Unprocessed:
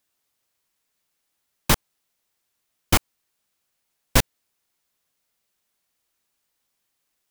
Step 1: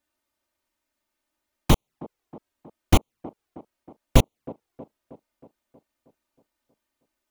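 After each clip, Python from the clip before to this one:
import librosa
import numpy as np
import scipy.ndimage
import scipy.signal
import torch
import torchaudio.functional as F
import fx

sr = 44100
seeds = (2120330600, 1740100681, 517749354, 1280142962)

y = fx.high_shelf(x, sr, hz=2300.0, db=-10.5)
y = fx.env_flanger(y, sr, rest_ms=3.3, full_db=-22.0)
y = fx.echo_wet_bandpass(y, sr, ms=317, feedback_pct=58, hz=420.0, wet_db=-15)
y = y * librosa.db_to_amplitude(5.0)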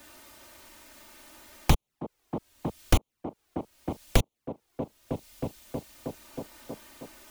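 y = fx.band_squash(x, sr, depth_pct=100)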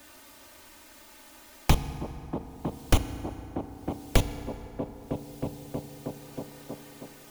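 y = fx.rev_fdn(x, sr, rt60_s=3.5, lf_ratio=1.0, hf_ratio=0.5, size_ms=21.0, drr_db=9.5)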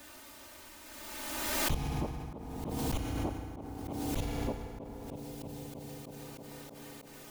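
y = fx.auto_swell(x, sr, attack_ms=140.0)
y = fx.pre_swell(y, sr, db_per_s=26.0)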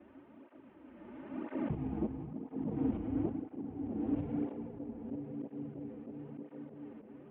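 y = fx.cvsd(x, sr, bps=16000)
y = fx.bandpass_q(y, sr, hz=260.0, q=1.7)
y = fx.flanger_cancel(y, sr, hz=1.0, depth_ms=7.9)
y = y * librosa.db_to_amplitude(8.5)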